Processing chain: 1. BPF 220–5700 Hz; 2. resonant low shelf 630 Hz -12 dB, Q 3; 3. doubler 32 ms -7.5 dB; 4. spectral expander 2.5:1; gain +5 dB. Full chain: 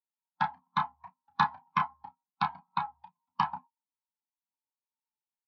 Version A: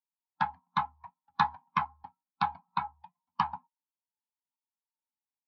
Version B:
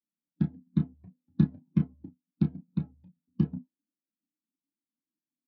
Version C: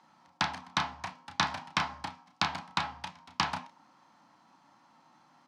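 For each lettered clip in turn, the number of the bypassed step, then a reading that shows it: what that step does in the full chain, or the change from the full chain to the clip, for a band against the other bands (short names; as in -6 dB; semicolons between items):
3, momentary loudness spread change -2 LU; 2, momentary loudness spread change +2 LU; 4, 4 kHz band +8.0 dB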